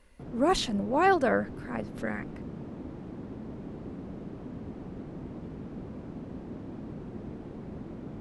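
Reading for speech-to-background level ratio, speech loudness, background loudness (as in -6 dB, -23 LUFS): 13.5 dB, -28.0 LUFS, -41.5 LUFS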